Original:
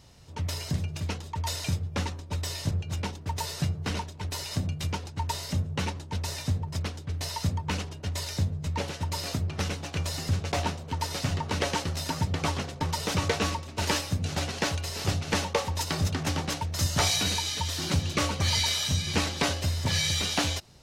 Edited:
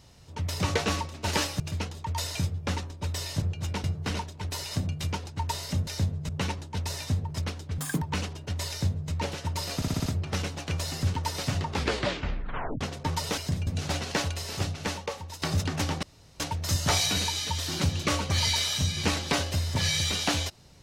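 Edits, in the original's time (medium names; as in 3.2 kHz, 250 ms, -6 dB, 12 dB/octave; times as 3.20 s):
0.60–0.89 s: swap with 13.14–14.14 s
3.13–3.64 s: delete
7.16–7.58 s: speed 176%
8.26–8.68 s: copy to 5.67 s
9.32 s: stutter 0.06 s, 6 plays
10.40–10.90 s: delete
11.43 s: tape stop 1.14 s
14.75–15.89 s: fade out, to -13 dB
16.50 s: insert room tone 0.37 s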